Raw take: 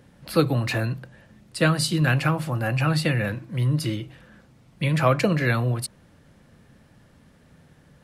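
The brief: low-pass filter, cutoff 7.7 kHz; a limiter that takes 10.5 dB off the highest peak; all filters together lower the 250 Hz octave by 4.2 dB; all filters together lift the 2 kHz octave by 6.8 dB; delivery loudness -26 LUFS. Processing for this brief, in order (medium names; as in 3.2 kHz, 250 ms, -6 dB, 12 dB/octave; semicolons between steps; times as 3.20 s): low-pass 7.7 kHz; peaking EQ 250 Hz -8 dB; peaking EQ 2 kHz +9 dB; trim -0.5 dB; peak limiter -15 dBFS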